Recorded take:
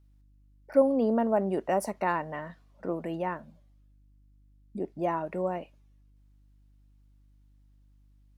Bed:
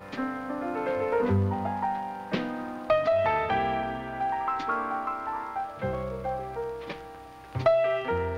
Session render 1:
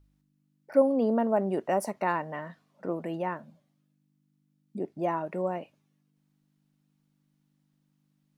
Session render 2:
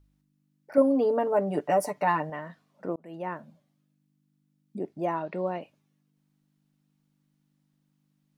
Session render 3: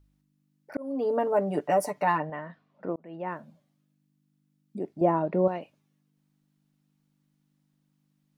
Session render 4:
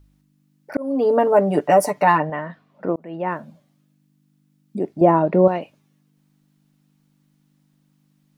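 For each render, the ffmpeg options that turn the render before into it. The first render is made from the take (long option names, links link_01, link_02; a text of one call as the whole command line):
ffmpeg -i in.wav -af "bandreject=frequency=50:width_type=h:width=4,bandreject=frequency=100:width_type=h:width=4" out.wav
ffmpeg -i in.wav -filter_complex "[0:a]asettb=1/sr,asplit=3[link_01][link_02][link_03];[link_01]atrim=end=0.774[link_04];[link_02]atrim=start=0.77:end=2.3,asetpts=PTS-STARTPTS,afade=type=in:duration=0.004:curve=qsin,afade=type=out:start_time=1.526:duration=0.004:curve=qsin,aecho=1:1:6.8:0.84,atrim=end_sample=67473[link_05];[link_03]atrim=start=2.296[link_06];[link_04][link_05]acrossfade=duration=0.004:curve1=hsin:curve2=qsin[link_07];[link_07][link_06]acrossfade=duration=0.004:curve1=qsin:curve2=hsin,asettb=1/sr,asplit=3[link_08][link_09][link_10];[link_08]atrim=end=5.154[link_11];[link_09]atrim=start=5.15:end=5.61,asetpts=PTS-STARTPTS,afade=type=in:duration=0.004:curve=qsin,afade=type=out:start_time=0.456:duration=0.004:curve=qsin,lowpass=frequency=4200:width_type=q:width=3.6[link_12];[link_10]atrim=start=5.606[link_13];[link_11][link_12]acrossfade=duration=0.004:curve1=hsin:curve2=qsin[link_14];[link_14][link_13]acrossfade=duration=0.004:curve1=qsin:curve2=hsin,asplit=2[link_15][link_16];[link_15]atrim=end=2.96,asetpts=PTS-STARTPTS,afade=type=out:start_time=2.956:duration=0.004:curve=hsin[link_17];[link_16]atrim=start=2.96,asetpts=PTS-STARTPTS,afade=type=in:duration=0.4[link_18];[link_17][link_18]concat=n=2:v=0:a=1" out.wav
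ffmpeg -i in.wav -filter_complex "[0:a]asettb=1/sr,asplit=3[link_01][link_02][link_03];[link_01]atrim=end=2.184[link_04];[link_02]atrim=start=2.18:end=3.28,asetpts=PTS-STARTPTS,afade=type=in:duration=0.004:curve=qsin,afade=type=out:start_time=1.096:duration=0.004:curve=qsin,lowpass=3100[link_05];[link_03]atrim=start=3.276[link_06];[link_04][link_05]acrossfade=duration=0.004:curve1=hsin:curve2=qsin[link_07];[link_07][link_06]acrossfade=duration=0.004:curve1=qsin:curve2=hsin,asettb=1/sr,asplit=3[link_08][link_09][link_10];[link_08]atrim=end=5.014[link_11];[link_09]atrim=start=5.01:end=5.48,asetpts=PTS-STARTPTS,afade=type=in:duration=0.004:curve=qsin,afade=type=out:start_time=0.466:duration=0.004:curve=qsin,tiltshelf=frequency=1400:gain=9[link_12];[link_10]atrim=start=5.476[link_13];[link_11][link_12]acrossfade=duration=0.004:curve1=hsin:curve2=qsin[link_14];[link_14][link_13]acrossfade=duration=0.004:curve1=qsin:curve2=hsin,asplit=2[link_15][link_16];[link_15]atrim=end=0.77,asetpts=PTS-STARTPTS,afade=type=out:start_time=0.766:duration=0.004:curve=hsin[link_17];[link_16]atrim=start=0.77,asetpts=PTS-STARTPTS,afade=type=in:duration=0.41[link_18];[link_17][link_18]concat=n=2:v=0:a=1" out.wav
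ffmpeg -i in.wav -af "volume=9.5dB,alimiter=limit=-3dB:level=0:latency=1" out.wav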